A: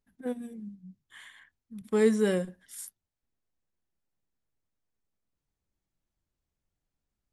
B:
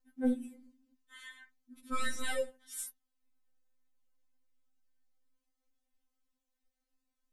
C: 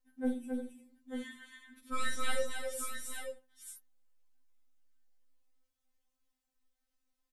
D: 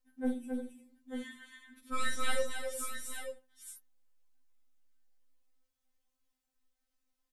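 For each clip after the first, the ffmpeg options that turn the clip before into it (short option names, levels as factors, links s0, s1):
-af "aeval=exprs='0.251*(cos(1*acos(clip(val(0)/0.251,-1,1)))-cos(1*PI/2))+0.01*(cos(6*acos(clip(val(0)/0.251,-1,1)))-cos(6*PI/2))':c=same,afftfilt=real='re*3.46*eq(mod(b,12),0)':imag='im*3.46*eq(mod(b,12),0)':win_size=2048:overlap=0.75,volume=1.33"
-af "equalizer=f=240:t=o:w=1.5:g=-3,aecho=1:1:47|270|352|889:0.355|0.596|0.266|0.447,volume=0.891"
-af "aeval=exprs='0.106*(cos(1*acos(clip(val(0)/0.106,-1,1)))-cos(1*PI/2))+0.0106*(cos(2*acos(clip(val(0)/0.106,-1,1)))-cos(2*PI/2))':c=same"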